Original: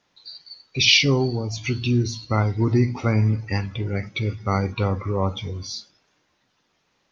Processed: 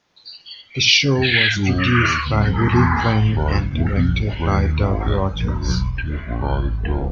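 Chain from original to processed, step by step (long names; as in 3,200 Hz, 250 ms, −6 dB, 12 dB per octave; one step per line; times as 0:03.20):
delay with pitch and tempo change per echo 95 ms, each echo −6 semitones, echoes 3
every ending faded ahead of time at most 300 dB per second
level +2 dB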